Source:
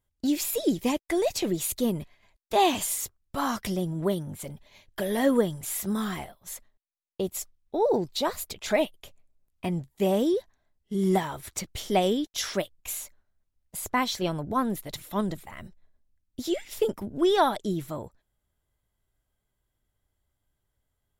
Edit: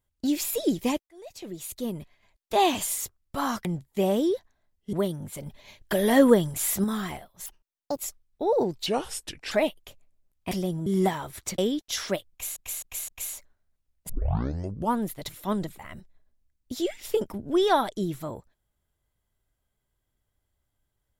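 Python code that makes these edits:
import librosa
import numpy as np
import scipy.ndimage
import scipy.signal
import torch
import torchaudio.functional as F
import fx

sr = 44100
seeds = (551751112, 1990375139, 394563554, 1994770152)

y = fx.edit(x, sr, fx.fade_in_span(start_s=1.07, length_s=1.48),
    fx.swap(start_s=3.65, length_s=0.35, other_s=9.68, other_length_s=1.28),
    fx.clip_gain(start_s=4.53, length_s=1.38, db=5.0),
    fx.speed_span(start_s=6.53, length_s=0.78, speed=1.5),
    fx.speed_span(start_s=8.19, length_s=0.49, speed=0.75),
    fx.cut(start_s=11.68, length_s=0.36),
    fx.repeat(start_s=12.76, length_s=0.26, count=4),
    fx.tape_start(start_s=13.77, length_s=0.9), tone=tone)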